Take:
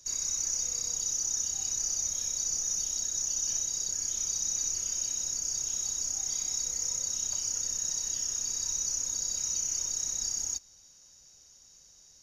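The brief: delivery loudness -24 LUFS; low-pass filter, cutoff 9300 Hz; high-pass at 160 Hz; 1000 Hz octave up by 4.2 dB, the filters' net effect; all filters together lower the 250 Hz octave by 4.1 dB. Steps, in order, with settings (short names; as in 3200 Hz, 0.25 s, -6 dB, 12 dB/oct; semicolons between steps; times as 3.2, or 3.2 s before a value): HPF 160 Hz; LPF 9300 Hz; bell 250 Hz -4.5 dB; bell 1000 Hz +5.5 dB; gain +6 dB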